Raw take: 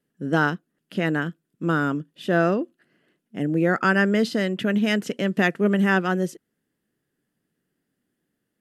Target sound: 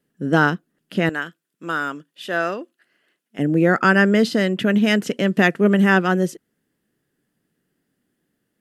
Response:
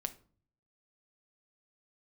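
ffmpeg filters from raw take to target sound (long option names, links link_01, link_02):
-filter_complex "[0:a]asettb=1/sr,asplit=3[link_01][link_02][link_03];[link_01]atrim=end=1.094[link_04];[link_02]atrim=start=1.09:end=3.39,asetpts=PTS-STARTPTS,afade=type=in:duration=0.004:curve=qsin,afade=type=out:start_time=2.296:duration=0.004:curve=qsin,highpass=frequency=1200:poles=1[link_05];[link_03]atrim=start=3.386[link_06];[link_04][link_05]acrossfade=duration=0.004:curve1=hsin:curve2=qsin[link_07];[link_07][link_06]acrossfade=duration=0.004:curve1=qsin:curve2=hsin,volume=4.5dB"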